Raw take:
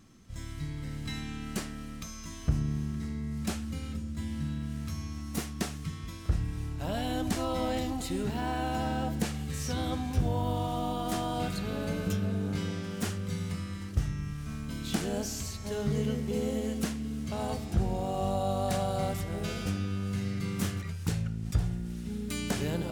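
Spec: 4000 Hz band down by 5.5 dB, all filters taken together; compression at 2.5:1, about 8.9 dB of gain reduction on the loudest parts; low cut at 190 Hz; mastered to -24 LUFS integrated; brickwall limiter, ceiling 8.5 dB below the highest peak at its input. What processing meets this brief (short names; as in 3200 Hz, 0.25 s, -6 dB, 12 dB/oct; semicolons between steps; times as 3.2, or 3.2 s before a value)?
HPF 190 Hz; bell 4000 Hz -7.5 dB; compressor 2.5:1, threshold -41 dBFS; gain +20 dB; limiter -14 dBFS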